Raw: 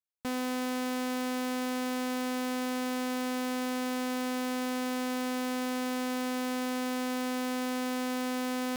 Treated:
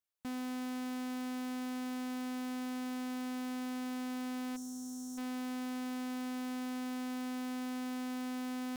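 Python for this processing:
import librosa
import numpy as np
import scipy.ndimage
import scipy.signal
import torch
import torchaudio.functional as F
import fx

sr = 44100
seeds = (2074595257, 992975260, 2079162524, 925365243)

y = fx.spec_box(x, sr, start_s=4.56, length_s=0.62, low_hz=240.0, high_hz=5300.0, gain_db=-26)
y = 10.0 ** (-39.0 / 20.0) * np.tanh(y / 10.0 ** (-39.0 / 20.0))
y = y * 10.0 ** (1.5 / 20.0)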